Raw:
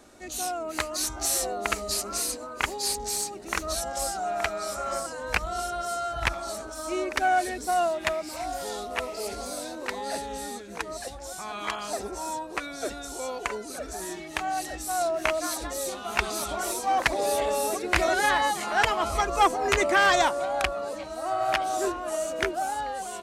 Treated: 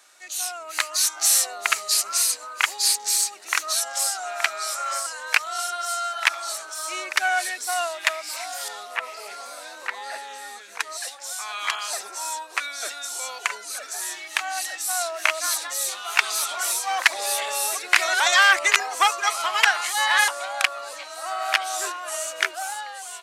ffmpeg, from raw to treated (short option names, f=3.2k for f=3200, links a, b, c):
-filter_complex "[0:a]asettb=1/sr,asplit=3[a][b][c];[a]atrim=end=8.684[d];[b]atrim=start=8.68:end=10.8,asetpts=PTS-STARTPTS,afade=t=in:d=0.004:c=qsin,afade=t=out:st=2.116:d=0.004:c=qsin,acrossover=split=2500[e][f];[f]acompressor=threshold=-51dB:ratio=4:attack=1:release=60[g];[e][g]amix=inputs=2:normalize=0[h];[c]atrim=start=10.796[i];[d][h]acrossfade=d=0.004:c1=hsin:c2=qsin[j];[j][i]acrossfade=d=0.004:c1=qsin:c2=hsin,asplit=3[k][l][m];[k]atrim=end=18.202[n];[l]atrim=start=18.198:end=20.282,asetpts=PTS-STARTPTS,areverse[o];[m]atrim=start=20.278[p];[n][o]acrossfade=d=0.004:c1=hsin:c2=hsin[q];[q][p]acrossfade=d=0.004:c1=hsin:c2=hsin,highpass=1.4k,dynaudnorm=f=120:g=11:m=4dB,volume=4.5dB"